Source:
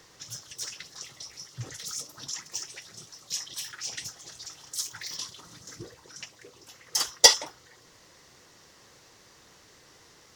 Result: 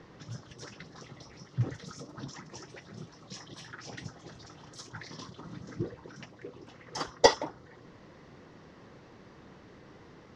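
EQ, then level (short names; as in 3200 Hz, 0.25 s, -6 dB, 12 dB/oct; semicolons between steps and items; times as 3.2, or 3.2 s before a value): bell 210 Hz +7.5 dB 1.4 oct; dynamic EQ 2700 Hz, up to -6 dB, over -51 dBFS, Q 1.3; tape spacing loss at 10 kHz 35 dB; +6.0 dB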